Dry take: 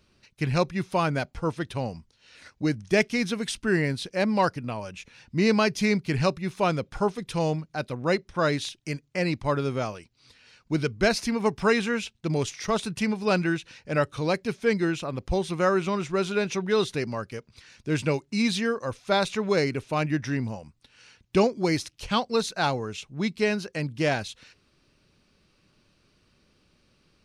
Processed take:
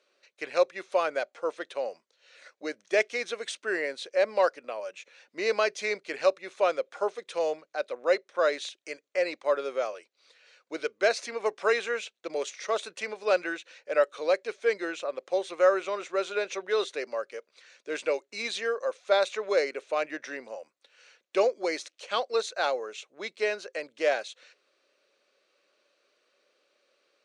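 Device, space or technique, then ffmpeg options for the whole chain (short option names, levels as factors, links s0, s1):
phone speaker on a table: -af "highpass=f=430:w=0.5412,highpass=f=430:w=1.3066,equalizer=f=550:t=q:w=4:g=7,equalizer=f=910:t=q:w=4:g=-6,equalizer=f=2900:t=q:w=4:g=-3,equalizer=f=5100:t=q:w=4:g=-7,lowpass=f=7900:w=0.5412,lowpass=f=7900:w=1.3066,volume=0.841"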